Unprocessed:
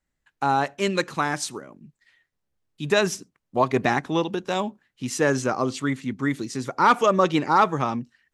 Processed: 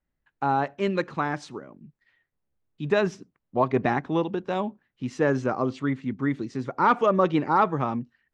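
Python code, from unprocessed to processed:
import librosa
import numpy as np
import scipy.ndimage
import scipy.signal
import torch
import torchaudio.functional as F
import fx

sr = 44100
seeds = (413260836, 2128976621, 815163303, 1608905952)

y = fx.spacing_loss(x, sr, db_at_10k=27)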